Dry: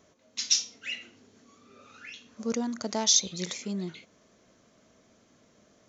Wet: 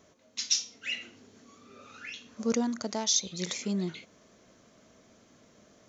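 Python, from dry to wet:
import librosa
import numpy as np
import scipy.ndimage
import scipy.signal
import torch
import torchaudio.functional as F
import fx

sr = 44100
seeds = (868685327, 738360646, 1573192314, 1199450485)

y = fx.rider(x, sr, range_db=4, speed_s=0.5)
y = y * 10.0 ** (-1.5 / 20.0)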